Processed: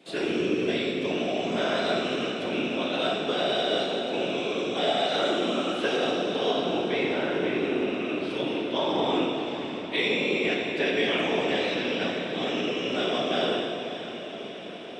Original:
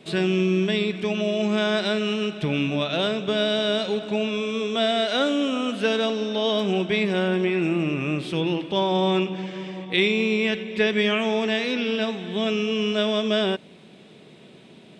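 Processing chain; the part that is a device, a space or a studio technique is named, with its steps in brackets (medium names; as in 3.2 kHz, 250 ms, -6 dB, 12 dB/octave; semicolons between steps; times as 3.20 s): 6.51–8.31 s: distance through air 95 m; echo that smears into a reverb 585 ms, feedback 73%, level -12 dB; whispering ghost (whisper effect; high-pass 270 Hz 12 dB/octave; reverberation RT60 2.3 s, pre-delay 6 ms, DRR -1 dB); trim -6 dB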